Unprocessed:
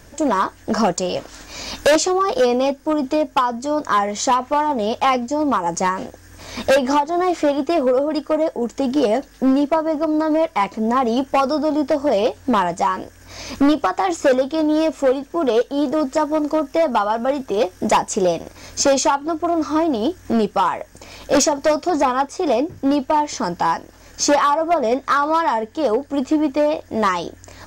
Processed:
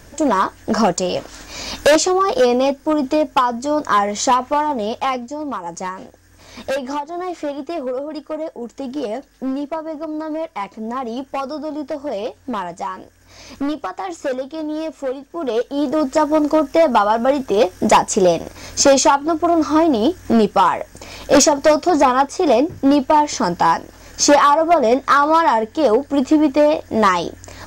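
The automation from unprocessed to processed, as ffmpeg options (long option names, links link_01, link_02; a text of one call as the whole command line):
ffmpeg -i in.wav -af "volume=13dB,afade=type=out:start_time=4.33:duration=1.05:silence=0.354813,afade=type=in:start_time=15.29:duration=1.06:silence=0.281838" out.wav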